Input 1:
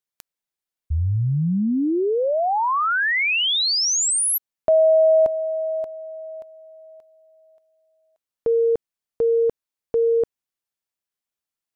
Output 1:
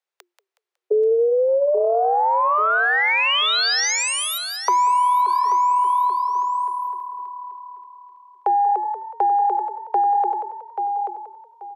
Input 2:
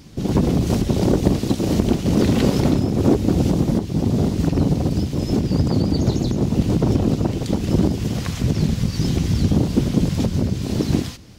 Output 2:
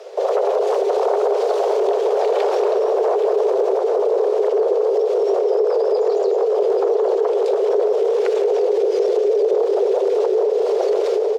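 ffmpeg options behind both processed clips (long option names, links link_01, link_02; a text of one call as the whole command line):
ffmpeg -i in.wav -filter_complex "[0:a]asplit=2[link_01][link_02];[link_02]aecho=0:1:834|1668|2502:0.335|0.0804|0.0193[link_03];[link_01][link_03]amix=inputs=2:normalize=0,asubboost=boost=5:cutoff=100,acontrast=80,aemphasis=mode=reproduction:type=75kf,asplit=2[link_04][link_05];[link_05]asplit=4[link_06][link_07][link_08][link_09];[link_06]adelay=184,afreqshift=37,volume=-11.5dB[link_10];[link_07]adelay=368,afreqshift=74,volume=-20.4dB[link_11];[link_08]adelay=552,afreqshift=111,volume=-29.2dB[link_12];[link_09]adelay=736,afreqshift=148,volume=-38.1dB[link_13];[link_10][link_11][link_12][link_13]amix=inputs=4:normalize=0[link_14];[link_04][link_14]amix=inputs=2:normalize=0,acompressor=threshold=-16dB:ratio=6:attack=6.4:release=88:knee=1:detection=peak,afreqshift=350" out.wav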